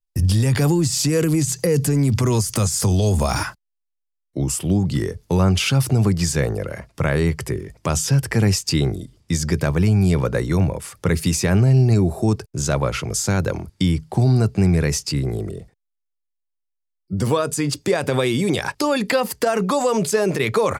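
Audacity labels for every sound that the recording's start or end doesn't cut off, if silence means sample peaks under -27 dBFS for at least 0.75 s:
4.370000	15.590000	sound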